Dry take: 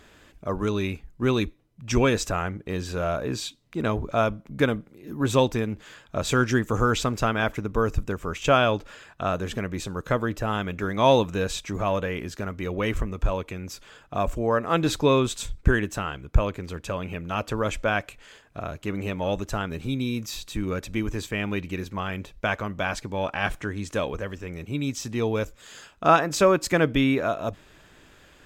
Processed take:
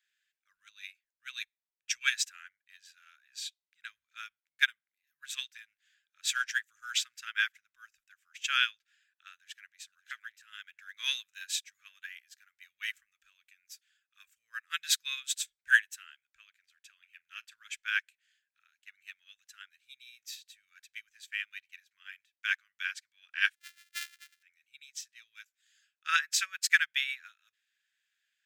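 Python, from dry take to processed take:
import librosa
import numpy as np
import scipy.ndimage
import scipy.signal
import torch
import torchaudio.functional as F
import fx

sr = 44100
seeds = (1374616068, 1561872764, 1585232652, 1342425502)

y = fx.echo_throw(x, sr, start_s=9.33, length_s=0.49, ms=590, feedback_pct=10, wet_db=-8.0)
y = fx.high_shelf(y, sr, hz=9700.0, db=7.5, at=(10.96, 16.23))
y = fx.doubler(y, sr, ms=34.0, db=-13, at=(16.96, 17.56))
y = fx.sample_sort(y, sr, block=128, at=(23.55, 24.43))
y = scipy.signal.sosfilt(scipy.signal.ellip(4, 1.0, 50, 1600.0, 'highpass', fs=sr, output='sos'), y)
y = fx.upward_expand(y, sr, threshold_db=-45.0, expansion=2.5)
y = y * 10.0 ** (8.0 / 20.0)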